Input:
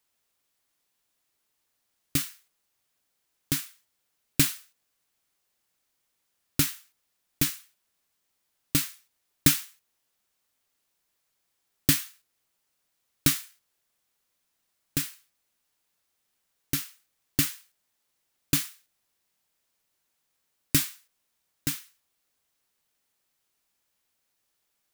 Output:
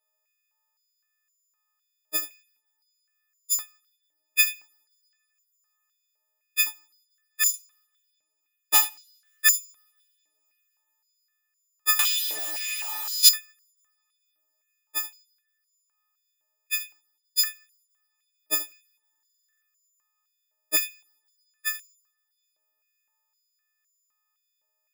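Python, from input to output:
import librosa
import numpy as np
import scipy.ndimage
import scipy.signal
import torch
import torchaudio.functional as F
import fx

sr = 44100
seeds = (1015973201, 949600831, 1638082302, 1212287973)

p1 = fx.freq_snap(x, sr, grid_st=6)
p2 = fx.transient(p1, sr, attack_db=5, sustain_db=-11)
p3 = fx.high_shelf(p2, sr, hz=3300.0, db=-11.0)
p4 = fx.leveller(p3, sr, passes=3, at=(7.46, 8.82))
p5 = p4 + fx.room_early_taps(p4, sr, ms=(28, 76), db=(-10.0, -13.5), dry=0)
p6 = fx.rev_double_slope(p5, sr, seeds[0], early_s=0.58, late_s=4.2, knee_db=-28, drr_db=19.5)
p7 = fx.power_curve(p6, sr, exponent=0.35, at=(11.99, 13.29))
p8 = fx.buffer_glitch(p7, sr, at_s=(19.11,), block=2048, repeats=10)
p9 = fx.filter_held_highpass(p8, sr, hz=3.9, low_hz=590.0, high_hz=6400.0)
y = p9 * librosa.db_to_amplitude(-9.0)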